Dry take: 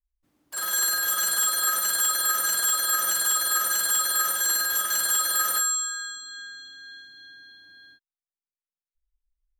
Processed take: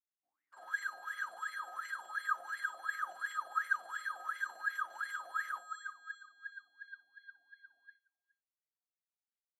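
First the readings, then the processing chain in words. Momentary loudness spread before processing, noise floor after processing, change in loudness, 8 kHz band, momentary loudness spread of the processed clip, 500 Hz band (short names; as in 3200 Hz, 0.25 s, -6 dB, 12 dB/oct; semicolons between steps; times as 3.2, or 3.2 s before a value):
14 LU, under -85 dBFS, -17.5 dB, -36.5 dB, 16 LU, -15.5 dB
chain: dynamic EQ 230 Hz, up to +6 dB, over -59 dBFS, Q 1.2; AGC gain up to 4 dB; wah 2.8 Hz 700–2100 Hz, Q 20; on a send: echo 0.417 s -21.5 dB; on the sum: gain +1 dB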